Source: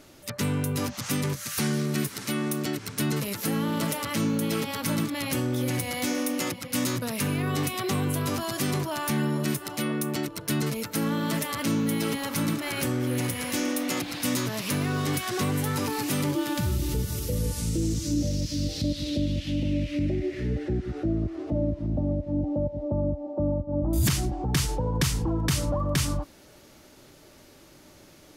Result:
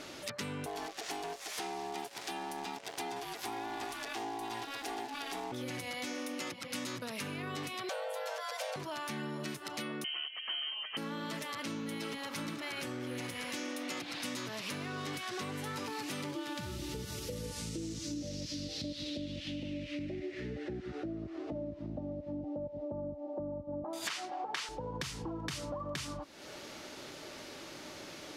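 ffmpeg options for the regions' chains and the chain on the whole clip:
-filter_complex "[0:a]asettb=1/sr,asplit=3[s0][s1][s2];[s0]atrim=end=0.664[s3];[s1]atrim=start=0.66:end=5.52,asetpts=PTS-STARTPTS,afade=t=in:d=0.004:c=qsin,afade=t=out:st=4.856:d=0.004:c=qsin,acrusher=bits=7:dc=4:mix=0:aa=0.000001,aeval=exprs='val(0)*sin(2*PI*560*n/s)':c=same[s4];[s2]atrim=start=5.516[s5];[s3][s4]acrossfade=d=0.004:c1=hsin:c2=qsin[s6];[s6][s5]acrossfade=d=0.004:c1=qsin:c2=hsin,asettb=1/sr,asplit=3[s7][s8][s9];[s7]atrim=end=7.894[s10];[s8]atrim=start=7.89:end=8.76,asetpts=PTS-STARTPTS,afade=t=in:d=0.004:c=qsin,afade=t=out:st=0.866:d=0.004:c=qsin,afreqshift=370,aeval=exprs='sgn(val(0))*max(abs(val(0))-0.00178,0)':c=same[s11];[s9]atrim=start=8.756[s12];[s10][s11]acrossfade=d=0.004:c1=hsin:c2=qsin[s13];[s13][s12]acrossfade=d=0.004:c1=qsin:c2=hsin,asettb=1/sr,asplit=3[s14][s15][s16];[s14]atrim=end=10.044[s17];[s15]atrim=start=10.04:end=10.97,asetpts=PTS-STARTPTS,afade=t=in:d=0.004:c=qsin,afade=t=out:st=0.926:d=0.004:c=qsin,aeval=exprs='clip(val(0),-1,0.0562)':c=same,acompressor=mode=upward:threshold=0.02:ratio=2.5:attack=3.2:release=140:knee=2.83:detection=peak,lowpass=f=2800:t=q:w=0.5098,lowpass=f=2800:t=q:w=0.6013,lowpass=f=2800:t=q:w=0.9,lowpass=f=2800:t=q:w=2.563,afreqshift=-3300[s18];[s16]atrim=start=10.966[s19];[s17][s18]acrossfade=d=0.004:c1=hsin:c2=qsin[s20];[s20][s19]acrossfade=d=0.004:c1=qsin:c2=hsin,asettb=1/sr,asplit=3[s21][s22][s23];[s21]atrim=end=23.844[s24];[s22]atrim=start=23.84:end=24.69,asetpts=PTS-STARTPTS,afade=t=in:d=0.004:c=qsin,afade=t=out:st=0.846:d=0.004:c=qsin,highpass=570,acontrast=82,asplit=2[s25][s26];[s26]highpass=f=720:p=1,volume=2.82,asoftclip=type=tanh:threshold=0.422[s27];[s25][s27]amix=inputs=2:normalize=0,lowpass=f=2300:p=1,volume=0.501[s28];[s23]atrim=start=24.686[s29];[s24][s28]acrossfade=d=0.004:c1=hsin:c2=qsin[s30];[s30][s29]acrossfade=d=0.004:c1=qsin:c2=hsin,lowpass=3900,aemphasis=mode=production:type=bsi,acompressor=threshold=0.00398:ratio=4,volume=2.37"

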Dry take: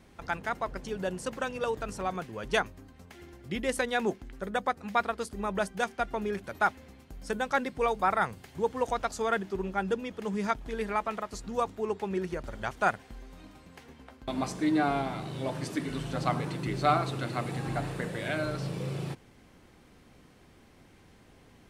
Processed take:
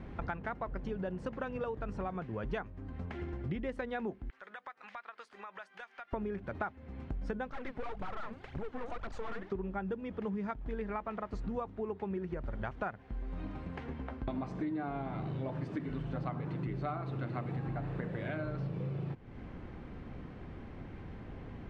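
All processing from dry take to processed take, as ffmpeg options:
-filter_complex "[0:a]asettb=1/sr,asplit=3[s0][s1][s2];[s0]atrim=end=4.304[s3];[s1]atrim=start=4.3:end=6.13,asetpts=PTS-STARTPTS,afade=t=in:d=0.004:c=qsin,afade=t=out:st=1.826:d=0.004:c=qsin,highpass=1400,acompressor=threshold=0.00282:ratio=5:attack=3.2:release=140:knee=1:detection=peak[s4];[s2]atrim=start=6.126[s5];[s3][s4]acrossfade=d=0.004:c1=hsin:c2=qsin[s6];[s6][s5]acrossfade=d=0.004:c1=qsin:c2=hsin,asettb=1/sr,asplit=3[s7][s8][s9];[s7]atrim=end=7.504[s10];[s8]atrim=start=7.5:end=9.52,asetpts=PTS-STARTPTS,afade=t=in:d=0.004:c=qsin,afade=t=out:st=2.016:d=0.004:c=qsin,aphaser=in_gain=1:out_gain=1:delay=5:decay=0.69:speed=1.9:type=triangular,lowshelf=f=330:g=-10.5,aeval=exprs='(tanh(89.1*val(0)+0.7)-tanh(0.7))/89.1':c=same[s11];[s9]atrim=start=9.516[s12];[s10][s11]acrossfade=d=0.004:c1=hsin:c2=qsin[s13];[s13][s12]acrossfade=d=0.004:c1=qsin:c2=hsin,lowpass=2100,lowshelf=f=220:g=8,acompressor=threshold=0.00794:ratio=8,volume=2.24"

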